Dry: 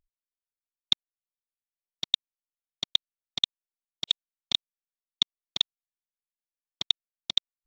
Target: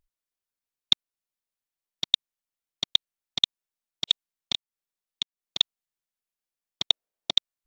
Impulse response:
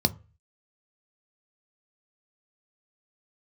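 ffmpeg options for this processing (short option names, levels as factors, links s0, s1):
-filter_complex "[0:a]asettb=1/sr,asplit=3[s0][s1][s2];[s0]atrim=end=4.534[s3];[s1]atrim=start=4.53:end=5.58,asetpts=PTS-STARTPTS,afade=t=in:d=0.004:c=qsin,afade=t=out:st=1.046:d=0.004:c=qsin,acompressor=threshold=0.0282:ratio=4[s4];[s2]atrim=start=5.576[s5];[s3][s4]acrossfade=d=0.004:c1=hsin:c2=qsin[s6];[s6][s5]acrossfade=d=0.004:c1=qsin:c2=hsin,asettb=1/sr,asplit=3[s7][s8][s9];[s7]atrim=end=6.894[s10];[s8]atrim=start=6.89:end=7.31,asetpts=PTS-STARTPTS,afade=t=in:d=0.004:c=qsin,afade=t=out:st=0.416:d=0.004:c=qsin,equalizer=f=550:t=o:w=1.6:g=12.5[s11];[s9]atrim=start=7.306[s12];[s10][s11]acrossfade=d=0.004:c1=hsin:c2=qsin[s13];[s13][s12]acrossfade=d=0.004:c1=qsin:c2=hsin,volume=1.41"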